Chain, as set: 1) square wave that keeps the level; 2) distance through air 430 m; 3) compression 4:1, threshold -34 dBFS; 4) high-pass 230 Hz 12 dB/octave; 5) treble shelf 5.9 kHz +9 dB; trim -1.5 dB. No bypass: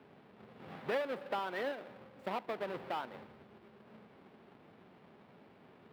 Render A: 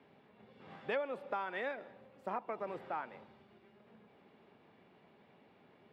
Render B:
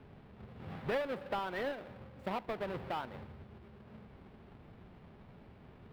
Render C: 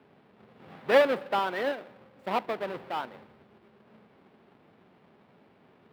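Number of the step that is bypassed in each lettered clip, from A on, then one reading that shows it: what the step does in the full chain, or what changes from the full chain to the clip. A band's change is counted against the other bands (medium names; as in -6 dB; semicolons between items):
1, distortion -6 dB; 4, 125 Hz band +8.5 dB; 3, 125 Hz band -6.0 dB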